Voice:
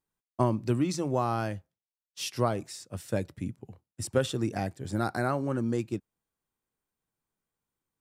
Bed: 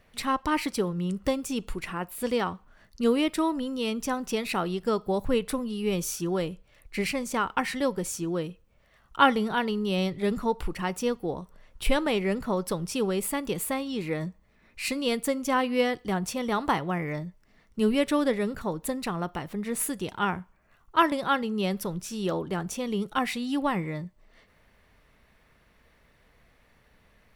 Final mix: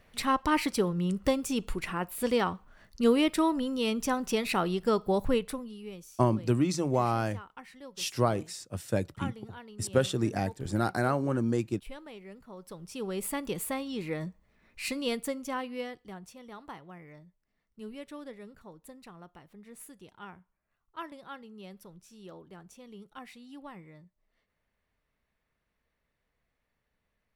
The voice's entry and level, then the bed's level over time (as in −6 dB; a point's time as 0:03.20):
5.80 s, +1.0 dB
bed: 0:05.27 0 dB
0:06.10 −20.5 dB
0:12.47 −20.5 dB
0:13.27 −4 dB
0:15.08 −4 dB
0:16.38 −19 dB